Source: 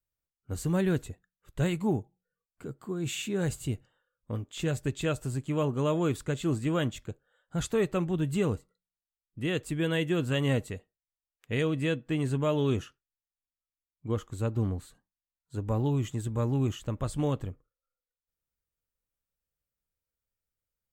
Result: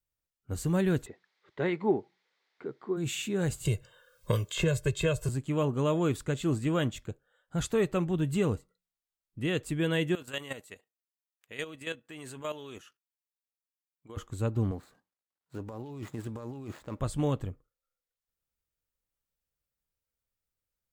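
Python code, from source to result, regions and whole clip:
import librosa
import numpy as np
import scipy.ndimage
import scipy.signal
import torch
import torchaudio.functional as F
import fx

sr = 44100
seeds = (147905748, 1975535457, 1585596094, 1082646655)

y = fx.dmg_noise_colour(x, sr, seeds[0], colour='blue', level_db=-64.0, at=(1.05, 2.96), fade=0.02)
y = fx.cabinet(y, sr, low_hz=250.0, low_slope=12, high_hz=3900.0, hz=(390.0, 880.0, 2000.0, 2800.0), db=(7, 4, 7, -7), at=(1.05, 2.96), fade=0.02)
y = fx.chain(y, sr, fx.comb(ms=1.9, depth=0.96),
    fx.band_squash(depth_pct=100), at=(3.65, 5.29))
y = fx.chain(y, sr, fx.highpass(hz=870.0, slope=6),
    fx.high_shelf(hz=9400.0, db=6.5),
    fx.level_steps(step_db=11), at=(10.15, 14.17))
y = fx.chain(y, sr, fx.median_filter(points=15),
    fx.highpass(hz=340.0, slope=6),
    fx.over_compress(threshold_db=-39.0, ratio=-1.0), at=(14.71, 17.0))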